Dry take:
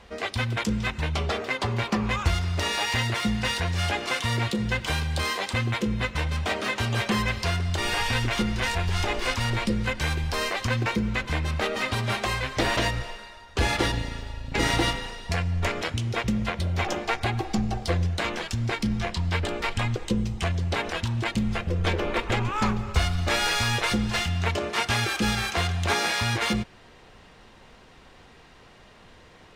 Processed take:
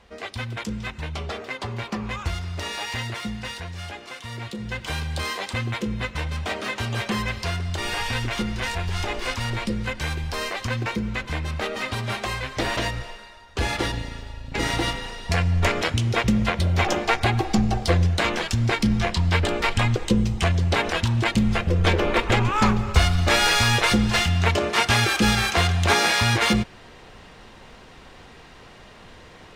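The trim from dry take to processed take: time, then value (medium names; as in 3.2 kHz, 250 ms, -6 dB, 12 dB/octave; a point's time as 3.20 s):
3.08 s -4 dB
4.16 s -11 dB
5.01 s -1 dB
14.82 s -1 dB
15.44 s +5.5 dB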